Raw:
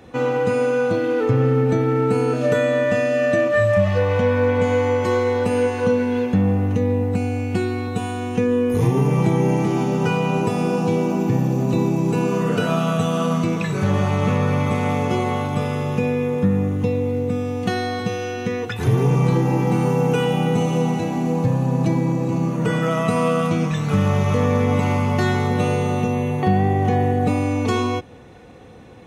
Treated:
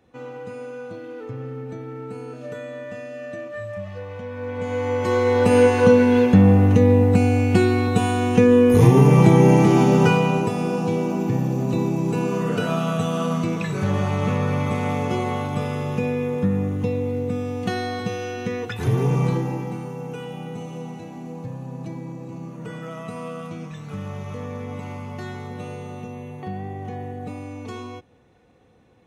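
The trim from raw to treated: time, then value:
4.28 s -15.5 dB
4.85 s -5 dB
5.56 s +5 dB
10.00 s +5 dB
10.53 s -3 dB
19.25 s -3 dB
19.88 s -14 dB

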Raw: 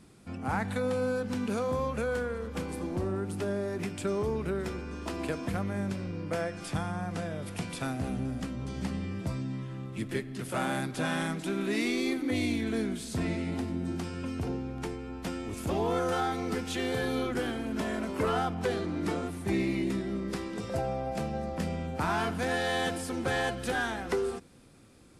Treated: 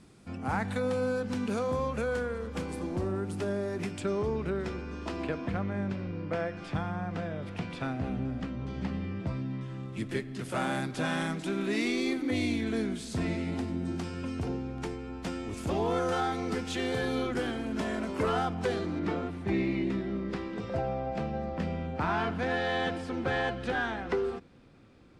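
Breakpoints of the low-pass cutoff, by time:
9.3 kHz
from 4.00 s 5.6 kHz
from 5.24 s 3.4 kHz
from 9.61 s 8.5 kHz
from 18.99 s 3.5 kHz

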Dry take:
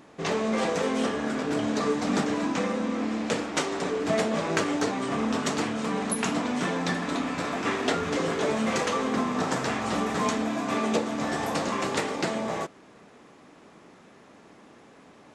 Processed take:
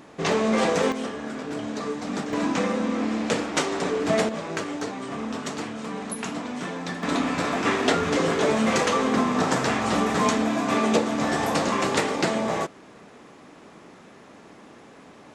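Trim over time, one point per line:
+4.5 dB
from 0.92 s -4 dB
from 2.33 s +3 dB
from 4.29 s -4 dB
from 7.03 s +4.5 dB

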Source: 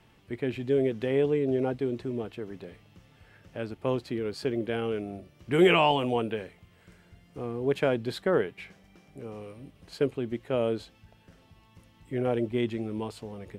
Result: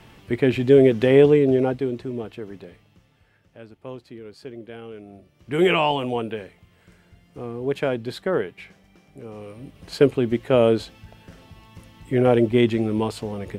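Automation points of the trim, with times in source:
1.25 s +11.5 dB
2.00 s +3 dB
2.54 s +3 dB
3.57 s -8 dB
4.93 s -8 dB
5.64 s +2 dB
9.27 s +2 dB
9.95 s +10.5 dB

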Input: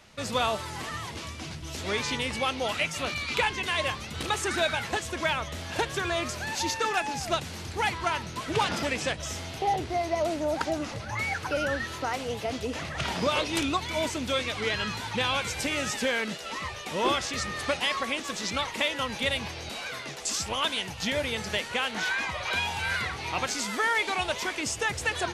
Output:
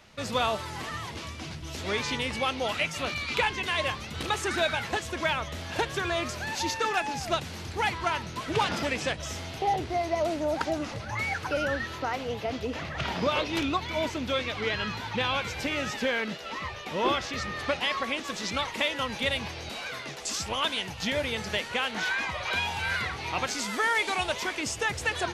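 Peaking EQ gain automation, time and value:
peaking EQ 8.9 kHz 0.99 oct
11.52 s -4.5 dB
12.15 s -13.5 dB
17.65 s -13.5 dB
18.45 s -4.5 dB
23.45 s -4.5 dB
24.14 s +3.5 dB
24.42 s -3 dB

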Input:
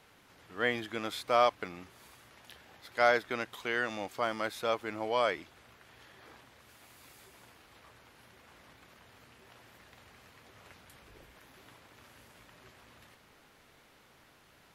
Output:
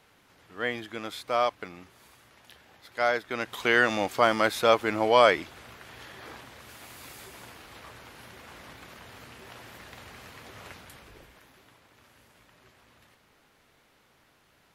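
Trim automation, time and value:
3.24 s 0 dB
3.65 s +10.5 dB
10.65 s +10.5 dB
11.69 s -2 dB

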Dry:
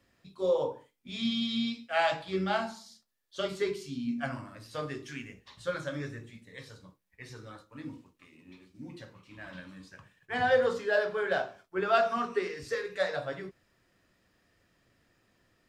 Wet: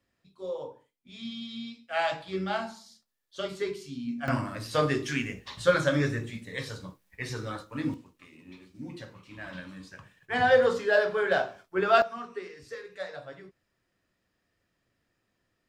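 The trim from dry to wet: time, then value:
-8 dB
from 1.88 s -1 dB
from 4.28 s +11 dB
from 7.94 s +4 dB
from 12.02 s -7.5 dB

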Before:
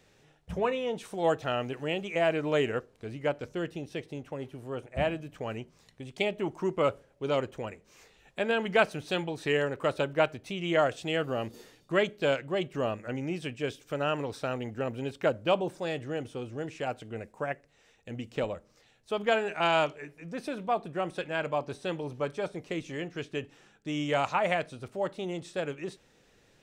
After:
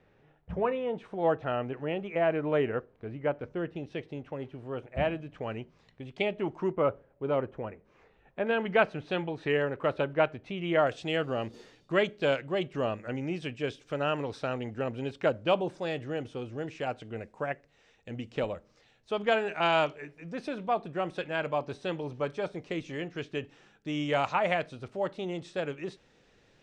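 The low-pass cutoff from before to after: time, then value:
1.9 kHz
from 3.76 s 3.3 kHz
from 6.72 s 1.6 kHz
from 8.47 s 2.7 kHz
from 10.87 s 5.5 kHz

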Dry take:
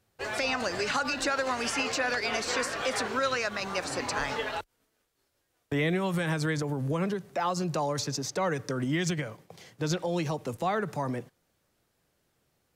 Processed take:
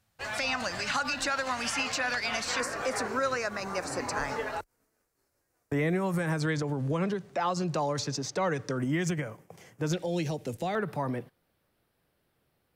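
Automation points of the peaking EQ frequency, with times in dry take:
peaking EQ -12.5 dB 0.68 oct
400 Hz
from 2.60 s 3.3 kHz
from 6.40 s 13 kHz
from 8.78 s 4 kHz
from 9.93 s 1.1 kHz
from 10.75 s 6.8 kHz

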